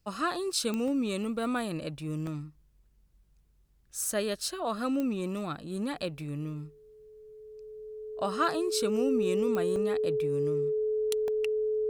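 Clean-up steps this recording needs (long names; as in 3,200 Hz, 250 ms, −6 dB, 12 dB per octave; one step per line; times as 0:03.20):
click removal
notch filter 430 Hz, Q 30
repair the gap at 0:00.88/0:02.27/0:03.91/0:09.76/0:11.28, 1.2 ms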